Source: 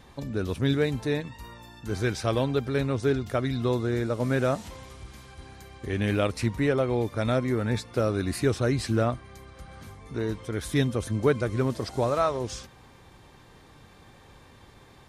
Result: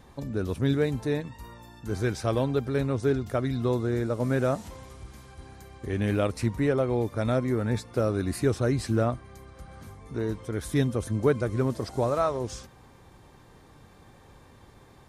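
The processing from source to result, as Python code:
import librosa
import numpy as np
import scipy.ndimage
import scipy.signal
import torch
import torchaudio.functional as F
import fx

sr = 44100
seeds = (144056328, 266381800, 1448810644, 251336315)

y = fx.peak_eq(x, sr, hz=3100.0, db=-5.5, octaves=1.9)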